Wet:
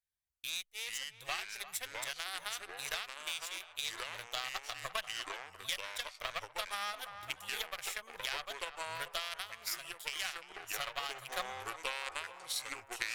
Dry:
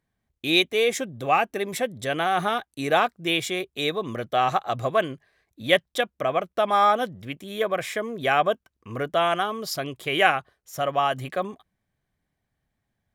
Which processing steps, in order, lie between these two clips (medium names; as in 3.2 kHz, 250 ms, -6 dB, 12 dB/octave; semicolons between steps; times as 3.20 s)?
Chebyshev shaper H 2 -9 dB, 7 -20 dB, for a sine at -3 dBFS; amplifier tone stack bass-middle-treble 10-0-10; waveshaping leveller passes 1; treble shelf 3.9 kHz +10 dB; compression 6:1, threshold -38 dBFS, peak gain reduction 25 dB; band-passed feedback delay 347 ms, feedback 70%, band-pass 1 kHz, level -13 dB; ever faster or slower copies 322 ms, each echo -4 st, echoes 2, each echo -6 dB; gain riding 0.5 s; trim +2 dB